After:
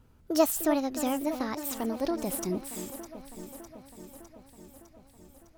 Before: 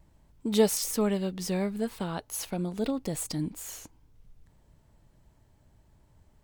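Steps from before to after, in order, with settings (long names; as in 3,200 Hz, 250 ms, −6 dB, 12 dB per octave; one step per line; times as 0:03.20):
gliding playback speed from 152% → 79%
delay that swaps between a low-pass and a high-pass 303 ms, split 2,200 Hz, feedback 80%, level −10.5 dB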